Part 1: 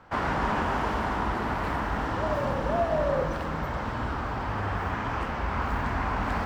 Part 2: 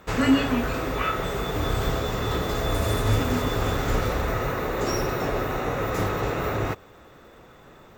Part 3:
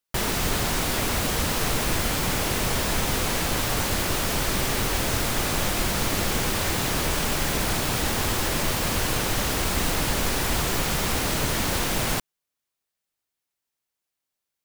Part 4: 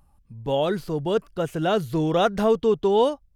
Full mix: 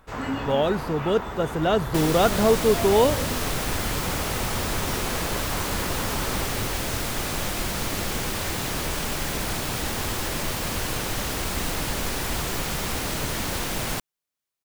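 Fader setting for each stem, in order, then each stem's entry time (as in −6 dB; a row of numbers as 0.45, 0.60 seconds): −6.5, −10.5, −3.0, +0.5 decibels; 0.00, 0.00, 1.80, 0.00 seconds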